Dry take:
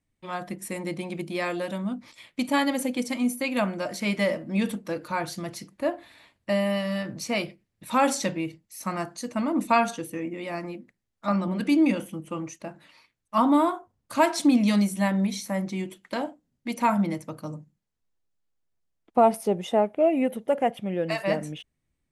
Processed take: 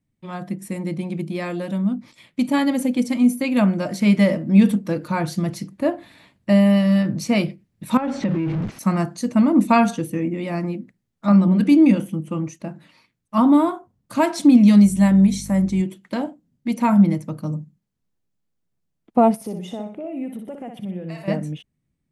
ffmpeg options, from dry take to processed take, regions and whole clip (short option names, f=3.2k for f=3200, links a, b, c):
-filter_complex "[0:a]asettb=1/sr,asplit=3[a][b][c];[a]atrim=end=7.974[d];[b]atrim=start=7.97:end=8.79,asetpts=PTS-STARTPTS,afade=t=in:d=0.004:c=qsin,afade=t=out:st=0.816:d=0.004:c=qsin,aeval=exprs='val(0)+0.5*0.0316*sgn(val(0))':c=same,lowpass=2.3k,acompressor=threshold=-29dB:ratio=5:attack=3.2:release=140:knee=1:detection=peak[e];[c]atrim=start=8.786[f];[d][e]acrossfade=d=0.004:c1=hsin:c2=qsin[g];[g][f]acrossfade=d=0.004:c1=qsin:c2=hsin,asettb=1/sr,asplit=3[h][i][j];[h]atrim=end=14.844[k];[i]atrim=start=14.84:end=15.82,asetpts=PTS-STARTPTS,afade=t=in:d=0.004:c=qsin,afade=t=out:st=0.976:d=0.004:c=qsin,equalizer=f=7.9k:w=1.6:g=8.5,aeval=exprs='val(0)+0.00891*(sin(2*PI*50*n/s)+sin(2*PI*2*50*n/s)/2+sin(2*PI*3*50*n/s)/3+sin(2*PI*4*50*n/s)/4+sin(2*PI*5*50*n/s)/5)':c=same[l];[j]atrim=start=15.816[m];[k][l]acrossfade=d=0.004:c1=hsin:c2=qsin[n];[n][m]acrossfade=d=0.004:c1=qsin:c2=hsin,asettb=1/sr,asplit=3[o][p][q];[o]atrim=end=19.354[r];[p]atrim=start=19.35:end=21.28,asetpts=PTS-STARTPTS,afade=t=in:d=0.004:c=qsin,afade=t=out:st=1.926:d=0.004:c=qsin,acompressor=threshold=-38dB:ratio=2.5:attack=3.2:release=140:knee=1:detection=peak,aecho=1:1:61|122|183|244:0.501|0.165|0.0546|0.018,atrim=end_sample=85113[s];[q]atrim=start=21.276[t];[r][s]acrossfade=d=0.004:c1=hsin:c2=qsin[u];[u][t]acrossfade=d=0.004:c1=qsin:c2=hsin,equalizer=f=170:t=o:w=1.8:g=12,dynaudnorm=f=290:g=21:m=11.5dB,volume=-2.5dB"